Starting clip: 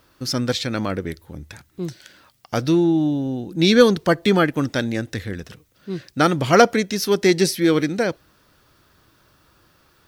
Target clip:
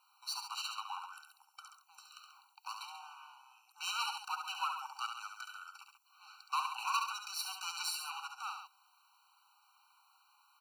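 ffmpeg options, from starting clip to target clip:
ffmpeg -i in.wav -filter_complex "[0:a]acrossover=split=160|1200|4200[link_01][link_02][link_03][link_04];[link_02]alimiter=limit=-13.5dB:level=0:latency=1[link_05];[link_01][link_05][link_03][link_04]amix=inputs=4:normalize=0,asetrate=41895,aresample=44100,aeval=exprs='clip(val(0),-1,0.0531)':channel_layout=same,afreqshift=-210,aecho=1:1:69.97|137:0.501|0.316,afftfilt=real='re*eq(mod(floor(b*sr/1024/770),2),1)':imag='im*eq(mod(floor(b*sr/1024/770),2),1)':win_size=1024:overlap=0.75,volume=-8.5dB" out.wav

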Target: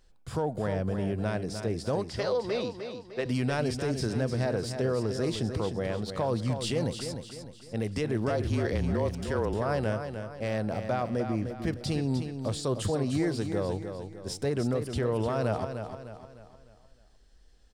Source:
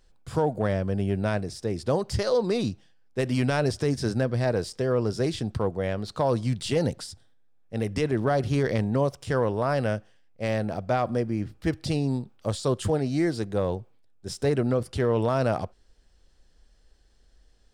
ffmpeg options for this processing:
ffmpeg -i in.wav -filter_complex "[0:a]asettb=1/sr,asplit=3[link_01][link_02][link_03];[link_01]atrim=end=2.044[link_04];[link_02]atrim=start=2.04:end=3.26,asetpts=PTS-STARTPTS,afade=type=in:duration=0.004:curve=qsin,afade=type=out:start_time=1.216:duration=0.004:curve=qsin,acrossover=split=340 5200:gain=0.224 1 0.141[link_05][link_06][link_07];[link_05][link_06][link_07]amix=inputs=3:normalize=0[link_08];[link_03]atrim=start=3.256[link_09];[link_04][link_08]acrossfade=duration=0.004:curve1=hsin:curve2=qsin[link_10];[link_10][link_09]acrossfade=duration=0.004:curve1=qsin:curve2=hsin,alimiter=limit=-20dB:level=0:latency=1:release=85,asettb=1/sr,asplit=3[link_11][link_12][link_13];[link_11]atrim=end=8.304[link_14];[link_12]atrim=start=8.3:end=9.54,asetpts=PTS-STARTPTS,afade=type=in:duration=0.004:curve=qsin,afade=type=out:start_time=1.236:duration=0.004:curve=qsin,afreqshift=-32[link_15];[link_13]atrim=start=9.536[link_16];[link_14][link_15]acrossfade=duration=0.004:curve1=hsin:curve2=qsin[link_17];[link_17][link_16]acrossfade=duration=0.004:curve1=qsin:curve2=hsin,aecho=1:1:303|606|909|1212|1515:0.398|0.171|0.0736|0.0317|0.0136,volume=-1dB" out.wav

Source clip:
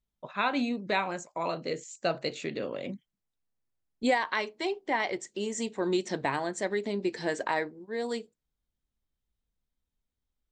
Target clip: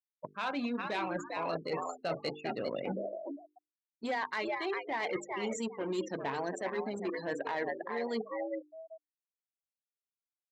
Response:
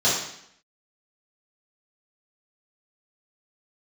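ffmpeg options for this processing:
-filter_complex "[0:a]asplit=5[link_01][link_02][link_03][link_04][link_05];[link_02]adelay=401,afreqshift=89,volume=-8dB[link_06];[link_03]adelay=802,afreqshift=178,volume=-17.4dB[link_07];[link_04]adelay=1203,afreqshift=267,volume=-26.7dB[link_08];[link_05]adelay=1604,afreqshift=356,volume=-36.1dB[link_09];[link_01][link_06][link_07][link_08][link_09]amix=inputs=5:normalize=0,asplit=2[link_10][link_11];[link_11]acrusher=bits=4:mix=0:aa=0.5,volume=-3dB[link_12];[link_10][link_12]amix=inputs=2:normalize=0,afftfilt=real='re*gte(hypot(re,im),0.0282)':imag='im*gte(hypot(re,im),0.0282)':win_size=1024:overlap=0.75,highshelf=frequency=7200:gain=-6.5,asoftclip=type=tanh:threshold=-17dB,highpass=92,areverse,acompressor=threshold=-37dB:ratio=8,areverse,bandreject=frequency=50:width_type=h:width=6,bandreject=frequency=100:width_type=h:width=6,bandreject=frequency=150:width_type=h:width=6,bandreject=frequency=200:width_type=h:width=6,bandreject=frequency=250:width_type=h:width=6,bandreject=frequency=300:width_type=h:width=6,bandreject=frequency=350:width_type=h:width=6,bandreject=frequency=400:width_type=h:width=6,bandreject=frequency=450:width_type=h:width=6,volume=5dB"

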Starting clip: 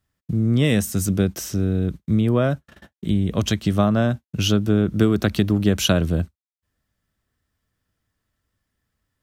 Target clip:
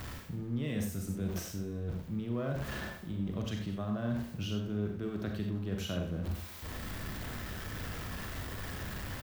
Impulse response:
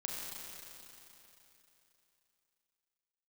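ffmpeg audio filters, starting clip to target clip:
-filter_complex "[0:a]aeval=exprs='val(0)+0.5*0.0266*sgn(val(0))':channel_layout=same,equalizer=frequency=9200:width=0.47:gain=-8.5,areverse,acompressor=threshold=-32dB:ratio=6,areverse,aecho=1:1:123|246|369:0.158|0.0523|0.0173[link_01];[1:a]atrim=start_sample=2205,afade=type=out:start_time=0.15:duration=0.01,atrim=end_sample=7056[link_02];[link_01][link_02]afir=irnorm=-1:irlink=0"

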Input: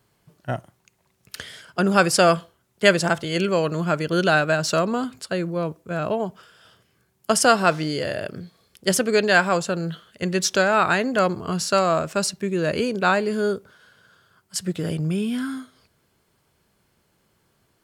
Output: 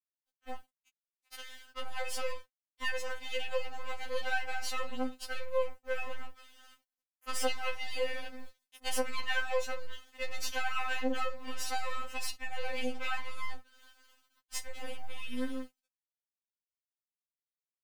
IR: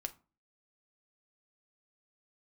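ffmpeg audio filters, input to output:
-filter_complex "[0:a]aeval=exprs='if(lt(val(0),0),0.251*val(0),val(0))':channel_layout=same,acrossover=split=390 3000:gain=0.251 1 0.224[link_01][link_02][link_03];[link_01][link_02][link_03]amix=inputs=3:normalize=0[link_04];[1:a]atrim=start_sample=2205,afade=type=out:start_time=0.16:duration=0.01,atrim=end_sample=7497[link_05];[link_04][link_05]afir=irnorm=-1:irlink=0,asplit=2[link_06][link_07];[link_07]alimiter=limit=-21dB:level=0:latency=1,volume=-0.5dB[link_08];[link_06][link_08]amix=inputs=2:normalize=0,dynaudnorm=framelen=450:gausssize=17:maxgain=15dB,acrusher=bits=10:mix=0:aa=0.000001,highshelf=frequency=2500:gain=11.5,acompressor=threshold=-30dB:ratio=2,aeval=exprs='sgn(val(0))*max(abs(val(0))-0.00473,0)':channel_layout=same,afftfilt=real='re*3.46*eq(mod(b,12),0)':imag='im*3.46*eq(mod(b,12),0)':win_size=2048:overlap=0.75,volume=-6.5dB"

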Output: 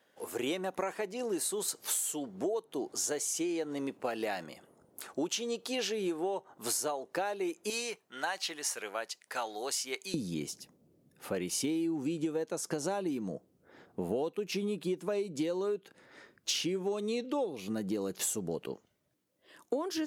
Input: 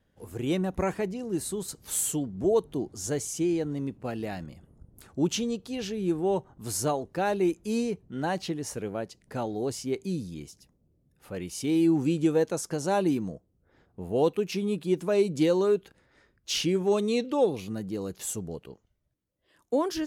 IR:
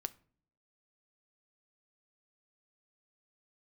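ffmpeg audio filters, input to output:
-af "asetnsamples=nb_out_samples=441:pad=0,asendcmd='7.7 highpass f 1100;10.14 highpass f 210',highpass=480,acompressor=threshold=-38dB:ratio=16,volume=8dB"

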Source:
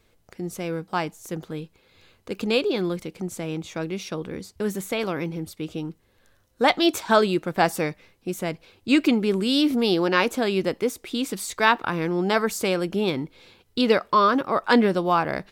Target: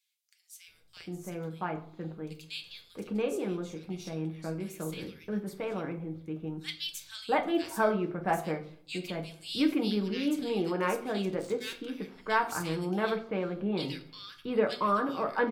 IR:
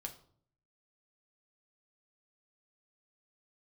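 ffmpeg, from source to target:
-filter_complex "[0:a]asettb=1/sr,asplit=3[link_01][link_02][link_03];[link_01]atrim=end=11.254[link_04];[link_02]atrim=start=11.25:end=11.87,asetpts=PTS-STARTPTS,afade=type=in:duration=0.004:curve=qsin,afade=type=out:start_time=0.616:duration=0.004:curve=qsin,adynamicsmooth=sensitivity=7.5:basefreq=890[link_05];[link_03]atrim=start=11.866[link_06];[link_04][link_05]acrossfade=duration=0.004:curve1=hsin:curve2=qsin[link_07];[link_07][link_06]acrossfade=duration=0.004:curve1=qsin:curve2=hsin,acrossover=split=2500[link_08][link_09];[link_08]adelay=680[link_10];[link_10][link_09]amix=inputs=2:normalize=0[link_11];[1:a]atrim=start_sample=2205[link_12];[link_11][link_12]afir=irnorm=-1:irlink=0,volume=-5.5dB"

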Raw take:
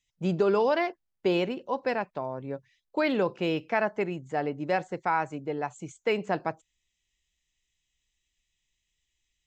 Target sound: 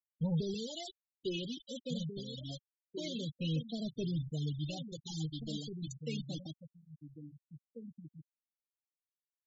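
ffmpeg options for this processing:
ffmpeg -i in.wav -filter_complex "[0:a]aphaser=in_gain=1:out_gain=1:delay=4:decay=0.5:speed=0.25:type=sinusoidal,acrossover=split=560[link_01][link_02];[link_02]acompressor=threshold=-41dB:ratio=6[link_03];[link_01][link_03]amix=inputs=2:normalize=0,anlmdn=0.00398,aresample=16000,acrusher=bits=6:mix=0:aa=0.000001,aresample=44100,firequalizer=gain_entry='entry(150,0);entry(280,-13);entry(1200,-24);entry(3200,9);entry(5200,6)':delay=0.05:min_phase=1,asoftclip=type=tanh:threshold=-30.5dB,asplit=2[link_04][link_05];[link_05]adelay=13,volume=-8.5dB[link_06];[link_04][link_06]amix=inputs=2:normalize=0,asplit=2[link_07][link_08];[link_08]adelay=1691,volume=-7dB,highshelf=frequency=4000:gain=-38[link_09];[link_07][link_09]amix=inputs=2:normalize=0,afftfilt=real='re*gte(hypot(re,im),0.0178)':imag='im*gte(hypot(re,im),0.0178)':win_size=1024:overlap=0.75,volume=1dB" out.wav

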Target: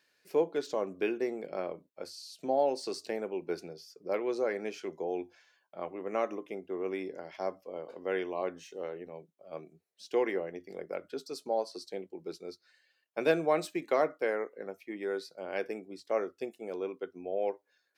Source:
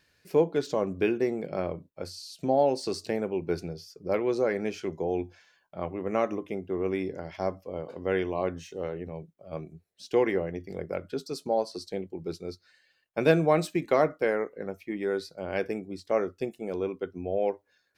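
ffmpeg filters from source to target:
ffmpeg -i in.wav -af "highpass=300,volume=-4dB" out.wav

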